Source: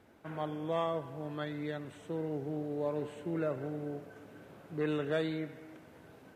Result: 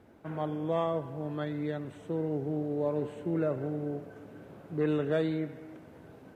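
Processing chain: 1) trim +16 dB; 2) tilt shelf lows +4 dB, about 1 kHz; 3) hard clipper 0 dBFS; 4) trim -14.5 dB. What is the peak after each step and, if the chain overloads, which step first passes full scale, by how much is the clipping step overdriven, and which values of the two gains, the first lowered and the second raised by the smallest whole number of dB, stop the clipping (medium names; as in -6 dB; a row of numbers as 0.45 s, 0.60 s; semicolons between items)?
-3.0 dBFS, -2.0 dBFS, -2.0 dBFS, -16.5 dBFS; nothing clips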